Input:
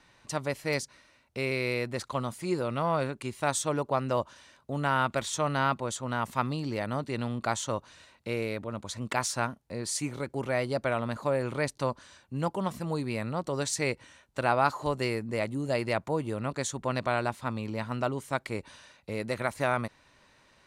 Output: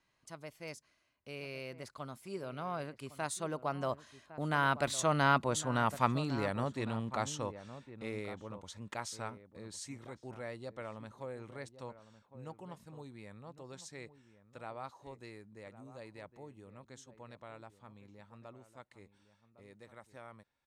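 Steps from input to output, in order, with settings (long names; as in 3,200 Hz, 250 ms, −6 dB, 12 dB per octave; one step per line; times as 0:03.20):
source passing by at 0:05.60, 24 m/s, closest 21 metres
slap from a distant wall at 190 metres, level −13 dB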